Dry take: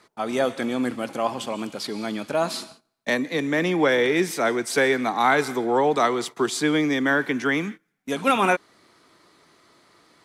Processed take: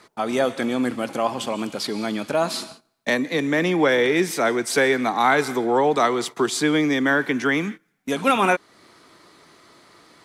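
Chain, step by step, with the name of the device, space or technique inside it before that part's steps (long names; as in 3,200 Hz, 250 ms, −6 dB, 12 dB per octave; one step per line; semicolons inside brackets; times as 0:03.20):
parallel compression (in parallel at −1 dB: downward compressor, threshold −32 dBFS, peak gain reduction 16.5 dB)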